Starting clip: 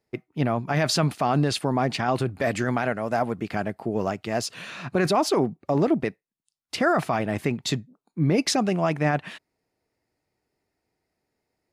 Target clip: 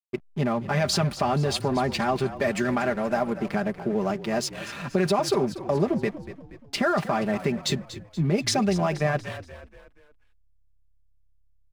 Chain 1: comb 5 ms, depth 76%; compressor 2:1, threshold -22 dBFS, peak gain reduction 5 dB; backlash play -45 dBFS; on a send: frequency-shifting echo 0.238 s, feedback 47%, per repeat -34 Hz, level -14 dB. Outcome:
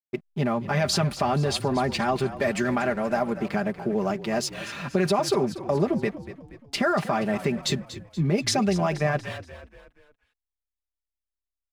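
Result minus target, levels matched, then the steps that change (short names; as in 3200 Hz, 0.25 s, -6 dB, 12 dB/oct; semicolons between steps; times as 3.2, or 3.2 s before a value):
backlash: distortion -8 dB
change: backlash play -37 dBFS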